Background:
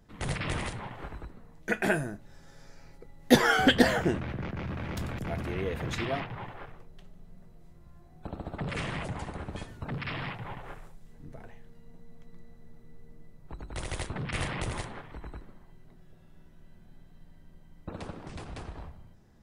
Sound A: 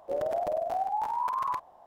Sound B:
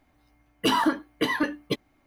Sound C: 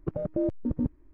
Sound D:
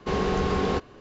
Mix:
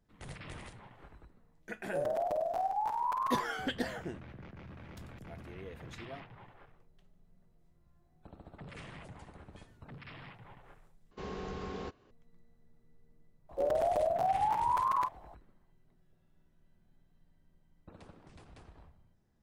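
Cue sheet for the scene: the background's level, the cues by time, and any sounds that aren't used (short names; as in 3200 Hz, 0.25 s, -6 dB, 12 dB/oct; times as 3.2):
background -14 dB
1.84 add A -3 dB
11.11 replace with D -16 dB
13.49 add A
not used: B, C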